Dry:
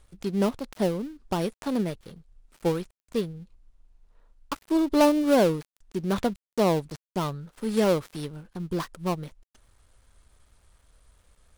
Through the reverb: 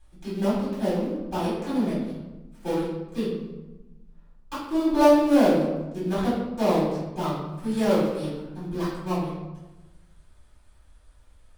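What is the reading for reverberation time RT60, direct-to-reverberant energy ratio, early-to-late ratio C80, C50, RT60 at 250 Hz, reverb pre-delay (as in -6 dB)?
1.1 s, -11.5 dB, 4.0 dB, 0.5 dB, 1.5 s, 3 ms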